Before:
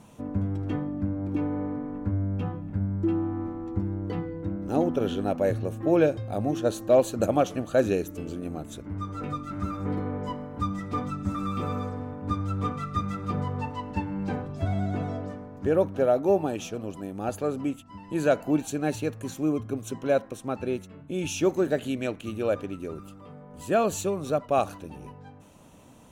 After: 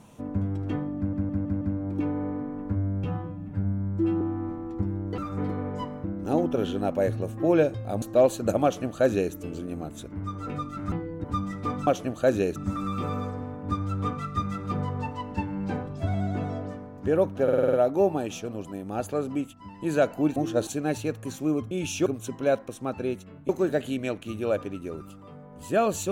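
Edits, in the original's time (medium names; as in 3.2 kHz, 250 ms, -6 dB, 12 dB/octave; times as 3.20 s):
0.97 s: stutter 0.16 s, 5 plays
2.40–3.18 s: stretch 1.5×
4.15–4.47 s: swap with 9.66–10.52 s
6.45–6.76 s: move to 18.65 s
7.38–8.07 s: copy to 11.15 s
16.02 s: stutter 0.05 s, 7 plays
21.12–21.47 s: move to 19.69 s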